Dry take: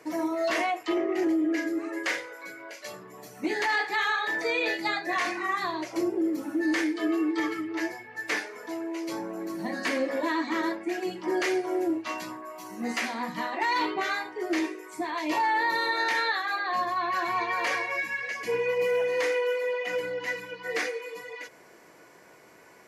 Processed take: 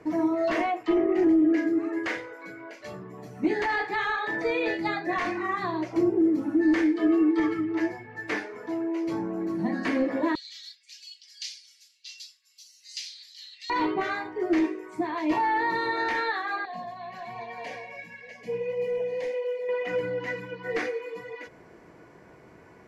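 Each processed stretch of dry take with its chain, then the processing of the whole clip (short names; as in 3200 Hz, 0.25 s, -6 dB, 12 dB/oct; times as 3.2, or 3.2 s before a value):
10.35–13.7 inverse Chebyshev high-pass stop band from 820 Hz, stop band 70 dB + bell 4800 Hz +13 dB 1.4 oct
16.65–19.69 flange 1.4 Hz, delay 1.8 ms, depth 6.1 ms, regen -67% + fixed phaser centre 340 Hz, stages 6
whole clip: RIAA curve playback; notch 550 Hz, Q 18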